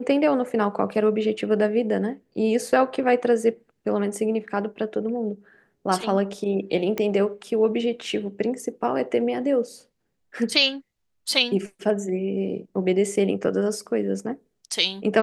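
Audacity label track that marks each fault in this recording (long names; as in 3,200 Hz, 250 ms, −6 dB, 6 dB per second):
6.980000	6.980000	click −12 dBFS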